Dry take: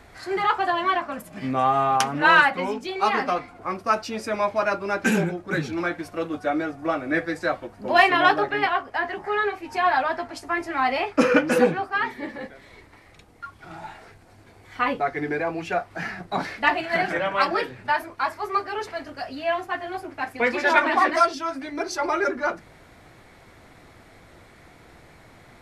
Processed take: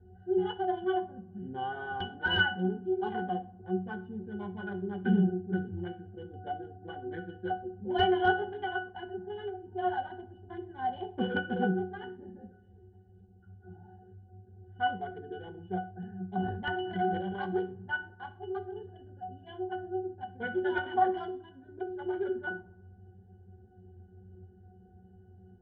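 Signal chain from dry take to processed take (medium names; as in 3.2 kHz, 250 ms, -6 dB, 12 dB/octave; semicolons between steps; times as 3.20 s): local Wiener filter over 41 samples; peaking EQ 3.3 kHz +14.5 dB 0.31 oct; filtered feedback delay 64 ms, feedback 64%, low-pass 2.5 kHz, level -20 dB; gated-style reverb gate 150 ms falling, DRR 11 dB; integer overflow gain 5.5 dB; distance through air 260 m; pitch-class resonator F#, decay 0.28 s; 16.32–17.46 s: decay stretcher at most 51 dB/s; trim +9 dB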